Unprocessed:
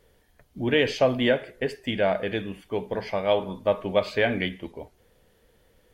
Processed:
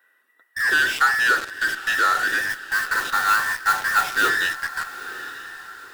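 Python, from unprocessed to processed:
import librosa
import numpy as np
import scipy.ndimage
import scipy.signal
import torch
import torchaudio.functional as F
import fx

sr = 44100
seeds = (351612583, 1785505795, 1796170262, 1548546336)

p1 = fx.band_invert(x, sr, width_hz=2000)
p2 = scipy.signal.sosfilt(scipy.signal.butter(4, 350.0, 'highpass', fs=sr, output='sos'), p1)
p3 = fx.peak_eq(p2, sr, hz=5700.0, db=-9.5, octaves=1.5)
p4 = fx.fuzz(p3, sr, gain_db=47.0, gate_db=-40.0)
p5 = p3 + (p4 * 10.0 ** (-11.0 / 20.0))
p6 = fx.mod_noise(p5, sr, seeds[0], snr_db=16, at=(2.48, 4.29), fade=0.02)
y = p6 + fx.echo_diffused(p6, sr, ms=927, feedback_pct=40, wet_db=-13.5, dry=0)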